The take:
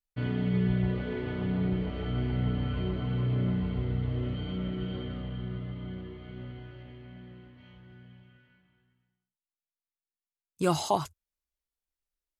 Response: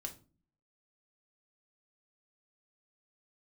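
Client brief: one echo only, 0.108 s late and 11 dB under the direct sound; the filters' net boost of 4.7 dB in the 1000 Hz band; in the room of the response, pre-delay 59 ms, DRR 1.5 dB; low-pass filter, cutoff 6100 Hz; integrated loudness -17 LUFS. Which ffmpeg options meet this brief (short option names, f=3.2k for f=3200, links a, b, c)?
-filter_complex "[0:a]lowpass=6.1k,equalizer=f=1k:t=o:g=6,aecho=1:1:108:0.282,asplit=2[a][b];[1:a]atrim=start_sample=2205,adelay=59[c];[b][c]afir=irnorm=-1:irlink=0,volume=1dB[d];[a][d]amix=inputs=2:normalize=0,volume=8.5dB"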